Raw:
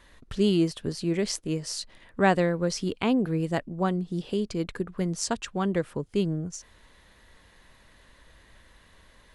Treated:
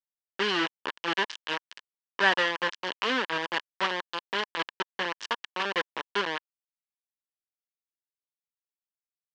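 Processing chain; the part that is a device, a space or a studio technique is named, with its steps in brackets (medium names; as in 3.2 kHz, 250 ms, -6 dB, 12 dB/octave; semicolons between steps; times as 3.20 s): hand-held game console (bit crusher 4-bit; cabinet simulation 410–5000 Hz, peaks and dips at 700 Hz -7 dB, 1 kHz +7 dB, 1.7 kHz +10 dB, 3 kHz +9 dB); trim -3.5 dB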